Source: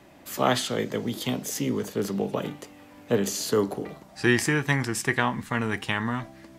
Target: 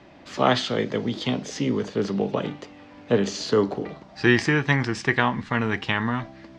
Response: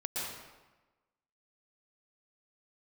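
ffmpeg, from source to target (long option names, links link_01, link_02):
-af "lowpass=frequency=5300:width=0.5412,lowpass=frequency=5300:width=1.3066,volume=3dB"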